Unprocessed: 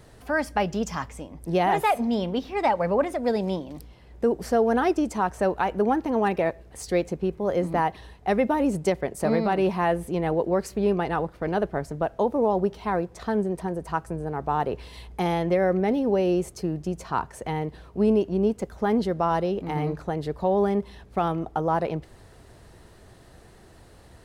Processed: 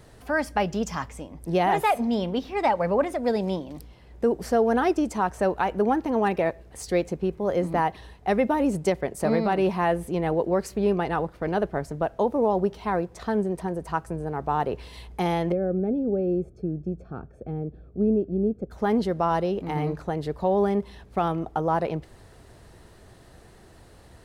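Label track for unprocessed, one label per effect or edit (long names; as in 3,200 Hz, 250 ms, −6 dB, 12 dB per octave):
15.520000	18.710000	moving average over 45 samples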